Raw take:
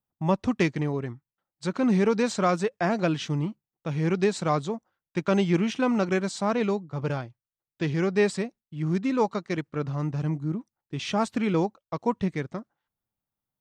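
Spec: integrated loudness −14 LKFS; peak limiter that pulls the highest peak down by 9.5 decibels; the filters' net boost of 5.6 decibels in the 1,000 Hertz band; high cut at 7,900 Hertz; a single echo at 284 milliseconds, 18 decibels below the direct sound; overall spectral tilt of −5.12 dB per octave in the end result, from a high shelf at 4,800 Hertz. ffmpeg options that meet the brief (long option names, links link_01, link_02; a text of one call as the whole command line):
ffmpeg -i in.wav -af "lowpass=7900,equalizer=frequency=1000:width_type=o:gain=7.5,highshelf=frequency=4800:gain=-7.5,alimiter=limit=-17dB:level=0:latency=1,aecho=1:1:284:0.126,volume=14.5dB" out.wav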